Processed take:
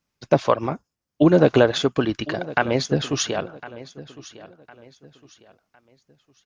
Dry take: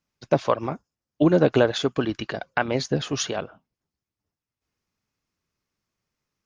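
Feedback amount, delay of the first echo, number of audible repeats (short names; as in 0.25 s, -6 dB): 34%, 1.057 s, 2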